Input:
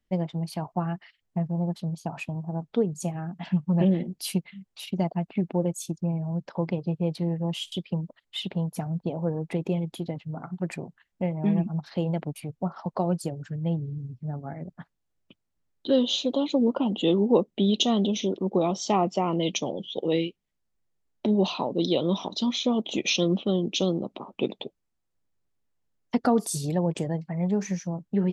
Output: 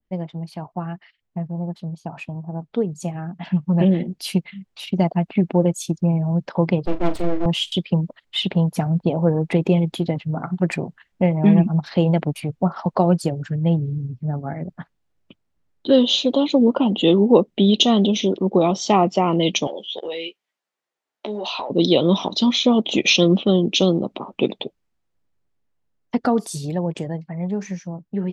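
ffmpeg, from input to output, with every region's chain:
ffmpeg -i in.wav -filter_complex "[0:a]asettb=1/sr,asplit=3[link_01][link_02][link_03];[link_01]atrim=end=6.854[link_04];[link_02]atrim=start=6.85:end=7.46,asetpts=PTS-STARTPTS,afade=type=in:duration=0.004:curve=qsin,afade=type=out:start_time=0.606:duration=0.004:curve=qsin,bandreject=frequency=60:width_type=h:width=6,bandreject=frequency=120:width_type=h:width=6,bandreject=frequency=180:width_type=h:width=6,bandreject=frequency=240:width_type=h:width=6,bandreject=frequency=300:width_type=h:width=6,bandreject=frequency=360:width_type=h:width=6,bandreject=frequency=420:width_type=h:width=6,bandreject=frequency=480:width_type=h:width=6,aeval=exprs='abs(val(0))':channel_layout=same,asplit=2[link_05][link_06];[link_06]adelay=40,volume=-11.5dB[link_07];[link_05][link_07]amix=inputs=2:normalize=0,atrim=end_sample=26901[link_08];[link_03]atrim=start=7.456[link_09];[link_04][link_08]acrossfade=duration=0.004:curve1=hsin:curve2=qsin[link_10];[link_10][link_09]acrossfade=duration=0.004:curve1=qsin:curve2=hsin,asettb=1/sr,asplit=3[link_11][link_12][link_13];[link_11]atrim=end=19.674[link_14];[link_12]atrim=start=19.67:end=21.7,asetpts=PTS-STARTPTS,afade=type=in:duration=0.004:curve=qsin,afade=type=out:start_time=2.026:duration=0.004:curve=qsin,highpass=580,acompressor=threshold=-32dB:ratio=10:attack=3.2:release=140:knee=1:detection=peak,asplit=2[link_15][link_16];[link_16]adelay=14,volume=-7dB[link_17];[link_15][link_17]amix=inputs=2:normalize=0,atrim=end_sample=89523[link_18];[link_13]atrim=start=21.696[link_19];[link_14][link_18]acrossfade=duration=0.004:curve1=hsin:curve2=qsin[link_20];[link_20][link_19]acrossfade=duration=0.004:curve1=qsin:curve2=hsin,lowpass=frequency=2800:poles=1,dynaudnorm=framelen=890:gausssize=9:maxgain=12dB,adynamicequalizer=threshold=0.0141:dfrequency=1600:dqfactor=0.7:tfrequency=1600:tqfactor=0.7:attack=5:release=100:ratio=0.375:range=2.5:mode=boostabove:tftype=highshelf" out.wav

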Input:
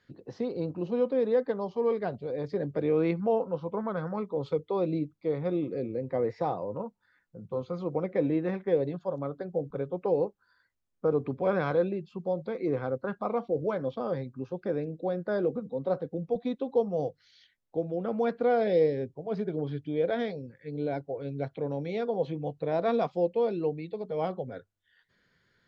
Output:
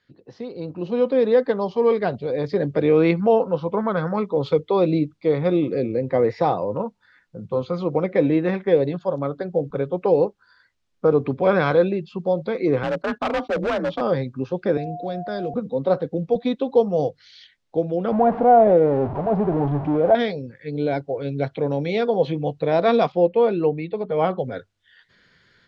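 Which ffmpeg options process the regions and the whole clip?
ffmpeg -i in.wav -filter_complex "[0:a]asettb=1/sr,asplit=3[link_01][link_02][link_03];[link_01]atrim=end=12.834[link_04];[link_02]atrim=start=12.83:end=14.01,asetpts=PTS-STARTPTS,afade=type=in:duration=0.004:curve=qsin,afade=type=out:start_time=1.176:duration=0.004:curve=qsin,agate=range=-19dB:threshold=-50dB:ratio=16:release=100:detection=peak,afreqshift=40,asoftclip=type=hard:threshold=-29.5dB[link_05];[link_03]atrim=start=14.006[link_06];[link_04][link_05]acrossfade=duration=0.004:curve1=hsin:curve2=qsin[link_07];[link_07][link_06]acrossfade=duration=0.004:curve1=qsin:curve2=hsin,asettb=1/sr,asplit=3[link_08][link_09][link_10];[link_08]atrim=end=14.774[link_11];[link_09]atrim=start=14.77:end=15.54,asetpts=PTS-STARTPTS,afade=type=in:duration=0.004:curve=qsin,afade=type=out:start_time=0.766:duration=0.004:curve=qsin,acrossover=split=160|3000[link_12][link_13][link_14];[link_13]acompressor=threshold=-54dB:ratio=1.5:attack=3.2:release=140:knee=2.83:detection=peak[link_15];[link_12][link_15][link_14]amix=inputs=3:normalize=0,aeval=exprs='val(0)+0.00891*sin(2*PI*710*n/s)':channel_layout=same[link_16];[link_10]atrim=start=15.536[link_17];[link_11][link_16]acrossfade=duration=0.004:curve1=hsin:curve2=qsin[link_18];[link_18][link_17]acrossfade=duration=0.004:curve1=qsin:curve2=hsin,asettb=1/sr,asplit=3[link_19][link_20][link_21];[link_19]atrim=end=18.124[link_22];[link_20]atrim=start=18.12:end=20.15,asetpts=PTS-STARTPTS,afade=type=in:duration=0.004:curve=qsin,afade=type=out:start_time=2.026:duration=0.004:curve=qsin,aeval=exprs='val(0)+0.5*0.0251*sgn(val(0))':channel_layout=same,lowpass=frequency=800:width_type=q:width=2.4,equalizer=frequency=470:width_type=o:width=0.31:gain=-7.5[link_23];[link_21]atrim=start=20.146[link_24];[link_22][link_23]acrossfade=duration=0.004:curve1=hsin:curve2=qsin[link_25];[link_25][link_24]acrossfade=duration=0.004:curve1=qsin:curve2=hsin,asettb=1/sr,asplit=3[link_26][link_27][link_28];[link_26]atrim=end=23.124[link_29];[link_27]atrim=start=23.12:end=24.38,asetpts=PTS-STARTPTS,afade=type=in:duration=0.004:curve=qsin,afade=type=out:start_time=1.256:duration=0.004:curve=qsin,lowpass=2800,equalizer=frequency=1300:width_type=o:width=0.79:gain=3.5[link_30];[link_28]atrim=start=24.376[link_31];[link_29][link_30]acrossfade=duration=0.004:curve1=hsin:curve2=qsin[link_32];[link_32][link_31]acrossfade=duration=0.004:curve1=qsin:curve2=hsin,lowpass=4100,highshelf=frequency=3100:gain=12,dynaudnorm=framelen=570:gausssize=3:maxgain=13dB,volume=-3dB" out.wav

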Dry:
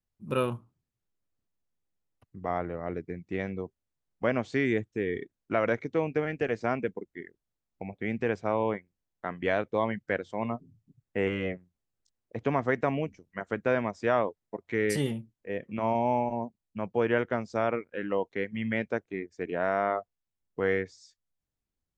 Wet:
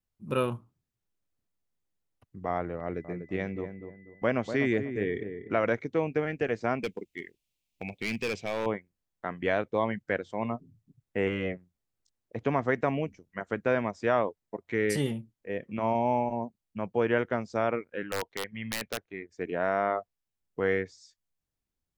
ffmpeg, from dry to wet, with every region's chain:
ffmpeg -i in.wav -filter_complex "[0:a]asettb=1/sr,asplit=3[link_01][link_02][link_03];[link_01]atrim=end=2.804[link_04];[link_02]atrim=start=2.8:end=5.67,asetpts=PTS-STARTPTS,afade=type=in:duration=0.004:curve=qsin,afade=type=out:start_time=2.866:duration=0.004:curve=qsin,agate=range=-33dB:threshold=-57dB:ratio=3:release=100:detection=peak,asplit=2[link_05][link_06];[link_06]adelay=244,lowpass=frequency=950:poles=1,volume=-7.5dB,asplit=2[link_07][link_08];[link_08]adelay=244,lowpass=frequency=950:poles=1,volume=0.37,asplit=2[link_09][link_10];[link_10]adelay=244,lowpass=frequency=950:poles=1,volume=0.37,asplit=2[link_11][link_12];[link_12]adelay=244,lowpass=frequency=950:poles=1,volume=0.37[link_13];[link_05][link_07][link_09][link_11][link_13]amix=inputs=5:normalize=0,atrim=end_sample=126567,aeval=exprs='val(0)+0.00126*sin(2*PI*2000*n/s)':channel_layout=same[link_14];[link_03]atrim=start=5.666[link_15];[link_04][link_14]acrossfade=duration=0.004:curve1=hsin:curve2=qsin[link_16];[link_16][link_15]acrossfade=duration=0.004:curve1=qsin:curve2=hsin,asettb=1/sr,asplit=3[link_17][link_18][link_19];[link_17]atrim=end=6.834[link_20];[link_18]atrim=start=6.83:end=8.66,asetpts=PTS-STARTPTS,afade=type=in:duration=0.004:curve=qsin,afade=type=out:start_time=1.826:duration=0.004:curve=qsin,highshelf=frequency=2000:width_type=q:width=3:gain=8.5,asoftclip=type=hard:threshold=-26dB[link_21];[link_19]atrim=start=8.656[link_22];[link_20][link_21]acrossfade=duration=0.004:curve1=hsin:curve2=qsin[link_23];[link_23][link_22]acrossfade=duration=0.004:curve1=qsin:curve2=hsin,asettb=1/sr,asplit=3[link_24][link_25][link_26];[link_24]atrim=end=18.034[link_27];[link_25]atrim=start=18.03:end=19.29,asetpts=PTS-STARTPTS,afade=type=in:duration=0.004:curve=qsin,afade=type=out:start_time=1.256:duration=0.004:curve=qsin,lowpass=4400,equalizer=frequency=250:width=0.54:gain=-7,aeval=exprs='(mod(13.3*val(0)+1,2)-1)/13.3':channel_layout=same[link_28];[link_26]atrim=start=19.286[link_29];[link_27][link_28]acrossfade=duration=0.004:curve1=hsin:curve2=qsin[link_30];[link_30][link_29]acrossfade=duration=0.004:curve1=qsin:curve2=hsin" out.wav

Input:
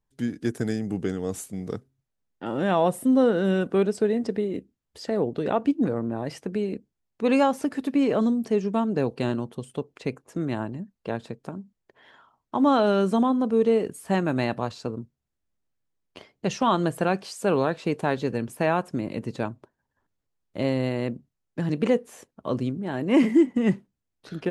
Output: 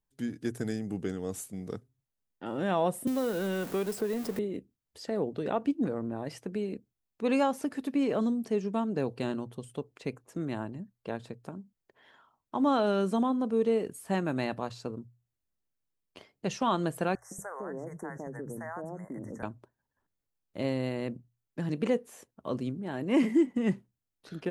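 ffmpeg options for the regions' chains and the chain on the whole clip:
ffmpeg -i in.wav -filter_complex "[0:a]asettb=1/sr,asplit=3[link_01][link_02][link_03];[link_01]atrim=end=3.074[link_04];[link_02]atrim=start=3.07:end=4.39,asetpts=PTS-STARTPTS,afade=type=in:duration=0.004:curve=qsin,afade=type=out:start_time=1.316:duration=0.004:curve=qsin,aeval=exprs='val(0)+0.5*0.0251*sgn(val(0))':channel_layout=same,highshelf=frequency=4200:gain=10,acrossover=split=410|2000[link_05][link_06][link_07];[link_05]acompressor=threshold=-27dB:ratio=4[link_08];[link_06]acompressor=threshold=-26dB:ratio=4[link_09];[link_07]acompressor=threshold=-40dB:ratio=4[link_10];[link_08][link_09][link_10]amix=inputs=3:normalize=0[link_11];[link_03]atrim=start=4.386[link_12];[link_04][link_11]acrossfade=duration=0.004:curve1=hsin:curve2=qsin[link_13];[link_13][link_12]acrossfade=duration=0.004:curve1=qsin:curve2=hsin,asettb=1/sr,asplit=3[link_14][link_15][link_16];[link_14]atrim=end=17.154[link_17];[link_15]atrim=start=17.15:end=19.43,asetpts=PTS-STARTPTS,afade=type=in:duration=0.004:curve=qsin,afade=type=out:start_time=2.276:duration=0.004:curve=qsin,acrossover=split=190|650[link_18][link_19][link_20];[link_19]adelay=160[link_21];[link_18]adelay=230[link_22];[link_22][link_21][link_20]amix=inputs=3:normalize=0,atrim=end_sample=100548,acompressor=threshold=-29dB:ratio=4:attack=3.2:release=140:knee=1:detection=peak,asuperstop=centerf=3400:order=20:qfactor=0.95[link_23];[link_16]atrim=start=19.426[link_24];[link_17][link_23]acrossfade=duration=0.004:curve1=hsin:curve2=qsin[link_25];[link_25][link_24]acrossfade=duration=0.004:curve1=qsin:curve2=hsin,highshelf=frequency=11000:gain=8,bandreject=frequency=60:width_type=h:width=6,bandreject=frequency=120:width_type=h:width=6,volume=-6dB" out.wav

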